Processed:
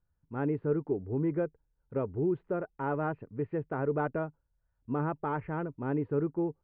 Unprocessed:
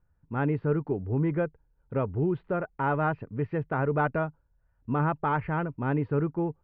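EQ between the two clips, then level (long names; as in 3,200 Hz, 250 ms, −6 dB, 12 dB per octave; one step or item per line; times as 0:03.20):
low-pass filter 3,000 Hz 12 dB per octave
dynamic equaliser 370 Hz, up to +8 dB, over −41 dBFS, Q 0.96
−8.5 dB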